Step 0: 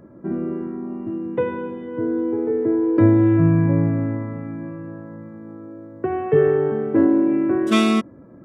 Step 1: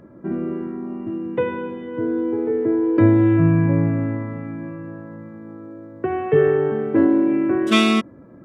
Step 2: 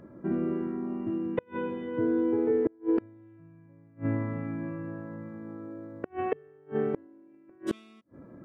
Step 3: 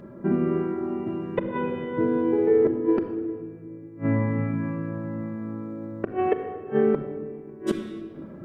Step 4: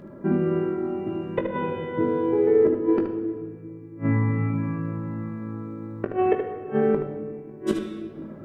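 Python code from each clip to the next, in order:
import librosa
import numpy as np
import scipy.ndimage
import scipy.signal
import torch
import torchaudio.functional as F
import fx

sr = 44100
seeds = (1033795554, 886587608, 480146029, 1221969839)

y1 = fx.peak_eq(x, sr, hz=2900.0, db=5.5, octaves=1.6)
y2 = fx.gate_flip(y1, sr, shuts_db=-12.0, range_db=-34)
y2 = y2 * 10.0 ** (-4.0 / 20.0)
y3 = fx.room_shoebox(y2, sr, seeds[0], volume_m3=2900.0, walls='mixed', distance_m=1.2)
y3 = y3 * 10.0 ** (5.5 / 20.0)
y4 = fx.room_early_taps(y3, sr, ms=(19, 75), db=(-8.0, -7.5))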